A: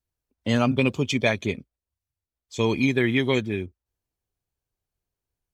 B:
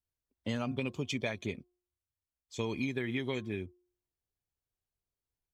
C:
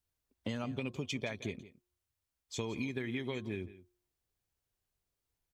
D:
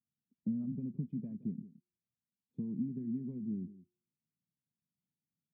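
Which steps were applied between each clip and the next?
compression, threshold -22 dBFS, peak gain reduction 6.5 dB; de-hum 357 Hz, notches 3; trim -8 dB
compression 2.5:1, threshold -43 dBFS, peak gain reduction 9.5 dB; delay 170 ms -16.5 dB; trim +5 dB
Butterworth band-pass 190 Hz, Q 2.1; trim +7.5 dB

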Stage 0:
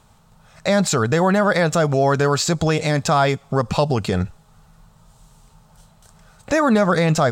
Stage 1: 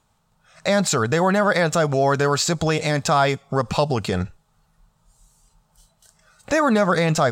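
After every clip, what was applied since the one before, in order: spectral noise reduction 10 dB; bass shelf 440 Hz -3.5 dB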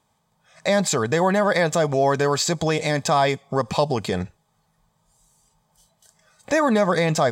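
comb of notches 1.4 kHz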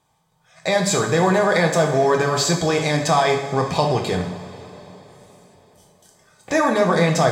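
two-slope reverb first 0.6 s, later 4.2 s, from -16 dB, DRR 1 dB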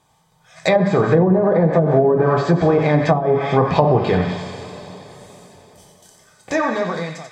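fade out at the end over 1.54 s; feedback echo behind a high-pass 89 ms, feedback 56%, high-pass 1.6 kHz, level -6 dB; low-pass that closes with the level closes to 350 Hz, closed at -12 dBFS; trim +5.5 dB

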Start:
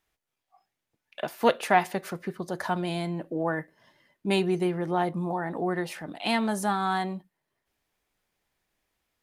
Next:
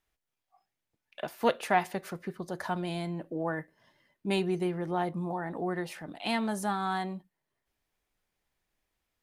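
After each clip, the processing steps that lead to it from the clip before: bass shelf 70 Hz +7 dB; trim -4.5 dB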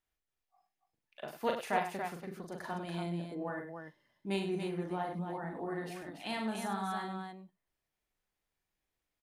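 loudspeakers at several distances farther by 14 m -4 dB, 34 m -9 dB, 98 m -6 dB; trim -8 dB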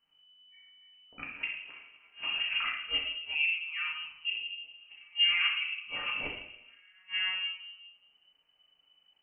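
inverted gate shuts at -30 dBFS, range -36 dB; simulated room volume 240 m³, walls mixed, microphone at 1.7 m; frequency inversion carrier 3 kHz; trim +5.5 dB

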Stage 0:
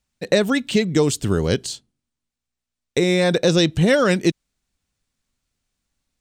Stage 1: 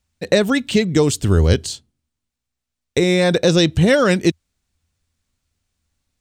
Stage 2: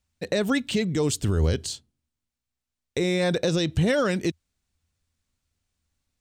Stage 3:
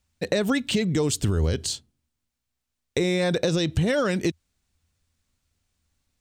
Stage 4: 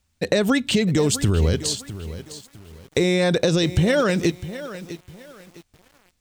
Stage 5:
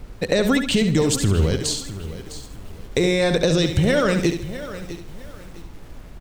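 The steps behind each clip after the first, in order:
peaking EQ 82 Hz +13 dB 0.42 oct; trim +2 dB
peak limiter -9 dBFS, peak gain reduction 7 dB; trim -5 dB
compression, threshold -23 dBFS, peak gain reduction 5.5 dB; trim +4 dB
bit-crushed delay 655 ms, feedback 35%, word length 7-bit, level -13.5 dB; trim +4 dB
added noise brown -37 dBFS; on a send: feedback delay 70 ms, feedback 33%, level -8 dB

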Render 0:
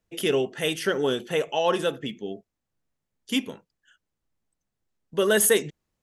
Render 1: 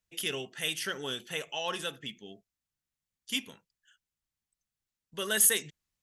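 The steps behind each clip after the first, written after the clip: amplifier tone stack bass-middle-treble 5-5-5; trim +5 dB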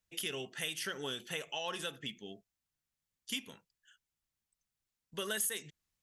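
compression 3:1, threshold -36 dBFS, peak gain reduction 13 dB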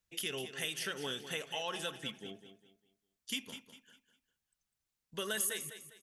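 feedback delay 201 ms, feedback 33%, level -11 dB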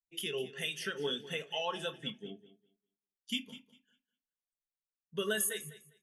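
on a send at -7.5 dB: reverberation RT60 0.25 s, pre-delay 4 ms; on the sum: spectral contrast expander 1.5:1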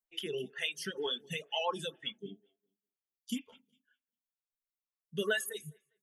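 vibrato 11 Hz 29 cents; reverb removal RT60 1.9 s; lamp-driven phase shifter 2.1 Hz; trim +4.5 dB

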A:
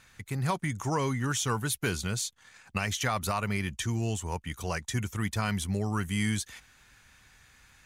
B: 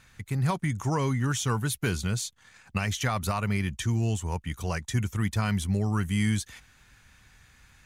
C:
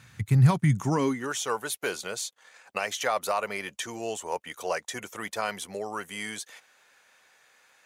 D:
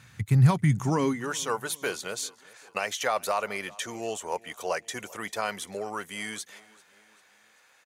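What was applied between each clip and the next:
tone controls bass +5 dB, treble -1 dB
gain riding 2 s; high-pass sweep 110 Hz -> 530 Hz, 0.63–1.34 s
feedback delay 393 ms, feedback 51%, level -23 dB

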